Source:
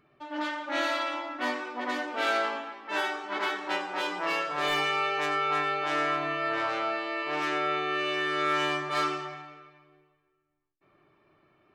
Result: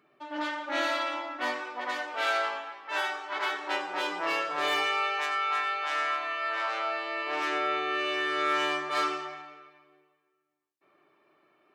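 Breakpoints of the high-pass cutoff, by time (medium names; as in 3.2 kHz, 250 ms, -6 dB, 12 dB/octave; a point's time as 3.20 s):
1.00 s 240 Hz
1.99 s 560 Hz
3.37 s 560 Hz
3.97 s 240 Hz
4.57 s 240 Hz
5.32 s 840 Hz
6.47 s 840 Hz
7.57 s 300 Hz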